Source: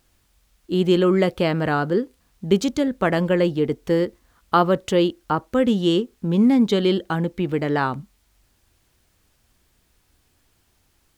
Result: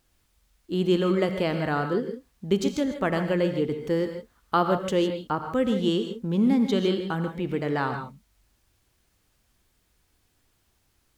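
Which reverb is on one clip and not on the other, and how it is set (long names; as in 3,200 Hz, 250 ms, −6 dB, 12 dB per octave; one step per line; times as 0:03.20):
reverb whose tail is shaped and stops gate 180 ms rising, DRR 6.5 dB
level −5.5 dB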